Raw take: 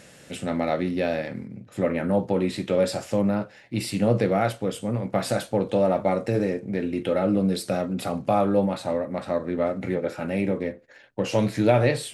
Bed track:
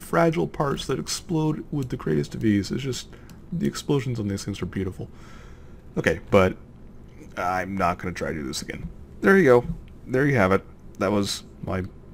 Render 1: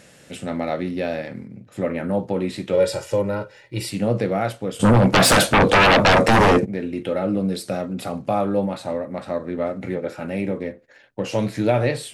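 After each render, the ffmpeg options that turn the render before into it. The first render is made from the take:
ffmpeg -i in.wav -filter_complex "[0:a]asettb=1/sr,asplit=3[link_01][link_02][link_03];[link_01]atrim=end=2.734[link_04];[link_02]atrim=start=2.73:end=3.89,asetpts=PTS-STARTPTS,afade=type=in:duration=0.004:curve=qsin,afade=type=out:start_time=1.156:duration=0.004:curve=qsin,aecho=1:1:2.1:0.9,atrim=end_sample=51156[link_05];[link_03]atrim=start=3.886[link_06];[link_04][link_05]acrossfade=duration=0.004:curve1=hsin:curve2=qsin[link_07];[link_07][link_06]acrossfade=duration=0.004:curve1=qsin:curve2=hsin,asplit=3[link_08][link_09][link_10];[link_08]afade=type=out:start_time=4.79:duration=0.02[link_11];[link_09]aeval=exprs='0.316*sin(PI/2*5.62*val(0)/0.316)':channel_layout=same,afade=type=in:start_time=4.79:duration=0.02,afade=type=out:start_time=6.64:duration=0.02[link_12];[link_10]afade=type=in:start_time=6.64:duration=0.02[link_13];[link_11][link_12][link_13]amix=inputs=3:normalize=0" out.wav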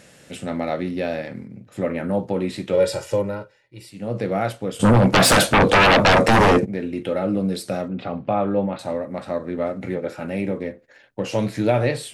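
ffmpeg -i in.wav -filter_complex "[0:a]asettb=1/sr,asplit=3[link_01][link_02][link_03];[link_01]atrim=end=7.884[link_04];[link_02]atrim=start=7.88:end=8.79,asetpts=PTS-STARTPTS,afade=type=in:duration=0.004:curve=qsin,afade=type=out:start_time=0.906:duration=0.004:curve=qsin,lowpass=frequency=3400:width=0.5412,lowpass=frequency=3400:width=1.3066[link_05];[link_03]atrim=start=8.786[link_06];[link_04][link_05]acrossfade=duration=0.004:curve1=hsin:curve2=qsin[link_07];[link_07][link_06]acrossfade=duration=0.004:curve1=qsin:curve2=hsin,asplit=3[link_08][link_09][link_10];[link_08]atrim=end=3.58,asetpts=PTS-STARTPTS,afade=type=out:start_time=3.15:duration=0.43:silence=0.199526[link_11];[link_09]atrim=start=3.58:end=3.94,asetpts=PTS-STARTPTS,volume=-14dB[link_12];[link_10]atrim=start=3.94,asetpts=PTS-STARTPTS,afade=type=in:duration=0.43:silence=0.199526[link_13];[link_11][link_12][link_13]concat=n=3:v=0:a=1" out.wav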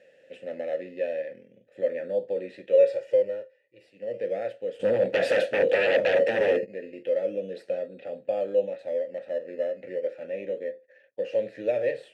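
ffmpeg -i in.wav -filter_complex "[0:a]asplit=2[link_01][link_02];[link_02]acrusher=samples=15:mix=1:aa=0.000001:lfo=1:lforange=9:lforate=0.34,volume=-10dB[link_03];[link_01][link_03]amix=inputs=2:normalize=0,asplit=3[link_04][link_05][link_06];[link_04]bandpass=frequency=530:width_type=q:width=8,volume=0dB[link_07];[link_05]bandpass=frequency=1840:width_type=q:width=8,volume=-6dB[link_08];[link_06]bandpass=frequency=2480:width_type=q:width=8,volume=-9dB[link_09];[link_07][link_08][link_09]amix=inputs=3:normalize=0" out.wav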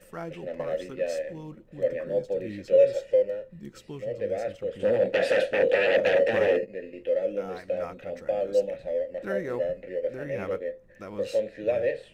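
ffmpeg -i in.wav -i bed.wav -filter_complex "[1:a]volume=-17.5dB[link_01];[0:a][link_01]amix=inputs=2:normalize=0" out.wav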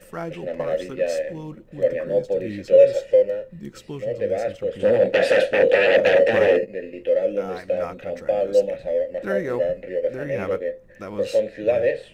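ffmpeg -i in.wav -af "volume=6dB" out.wav

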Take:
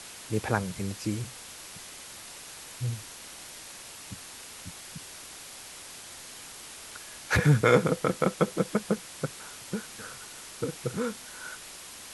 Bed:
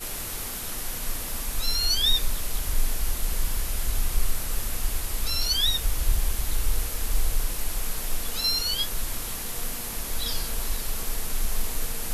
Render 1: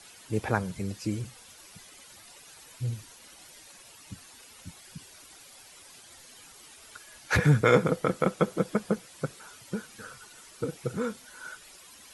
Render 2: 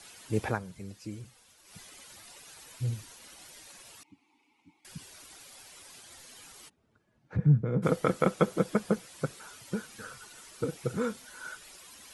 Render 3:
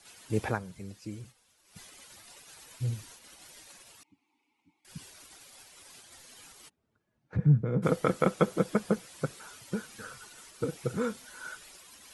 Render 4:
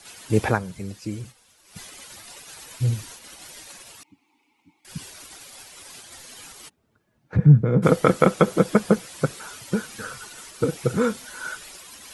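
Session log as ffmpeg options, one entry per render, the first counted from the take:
ffmpeg -i in.wav -af "afftdn=noise_reduction=11:noise_floor=-45" out.wav
ffmpeg -i in.wav -filter_complex "[0:a]asettb=1/sr,asplit=3[link_01][link_02][link_03];[link_01]atrim=end=4.034[link_04];[link_02]atrim=start=4.03:end=4.85,asetpts=PTS-STARTPTS,afade=type=in:duration=0.004:curve=qsin,afade=type=out:start_time=0.816:duration=0.004:curve=qsin,asplit=3[link_05][link_06][link_07];[link_05]bandpass=frequency=300:width_type=q:width=8,volume=0dB[link_08];[link_06]bandpass=frequency=870:width_type=q:width=8,volume=-6dB[link_09];[link_07]bandpass=frequency=2240:width_type=q:width=8,volume=-9dB[link_10];[link_08][link_09][link_10]amix=inputs=3:normalize=0[link_11];[link_03]atrim=start=4.846[link_12];[link_04][link_11]acrossfade=duration=0.004:curve1=hsin:curve2=qsin[link_13];[link_13][link_12]acrossfade=duration=0.004:curve1=qsin:curve2=hsin,asplit=3[link_14][link_15][link_16];[link_14]afade=type=out:start_time=6.68:duration=0.02[link_17];[link_15]bandpass=frequency=150:width_type=q:width=1.6,afade=type=in:start_time=6.68:duration=0.02,afade=type=out:start_time=7.82:duration=0.02[link_18];[link_16]afade=type=in:start_time=7.82:duration=0.02[link_19];[link_17][link_18][link_19]amix=inputs=3:normalize=0,asplit=3[link_20][link_21][link_22];[link_20]atrim=end=0.59,asetpts=PTS-STARTPTS,afade=type=out:start_time=0.46:duration=0.13:silence=0.334965[link_23];[link_21]atrim=start=0.59:end=1.64,asetpts=PTS-STARTPTS,volume=-9.5dB[link_24];[link_22]atrim=start=1.64,asetpts=PTS-STARTPTS,afade=type=in:duration=0.13:silence=0.334965[link_25];[link_23][link_24][link_25]concat=n=3:v=0:a=1" out.wav
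ffmpeg -i in.wav -af "agate=range=-7dB:threshold=-51dB:ratio=16:detection=peak" out.wav
ffmpeg -i in.wav -af "volume=9.5dB,alimiter=limit=-3dB:level=0:latency=1" out.wav

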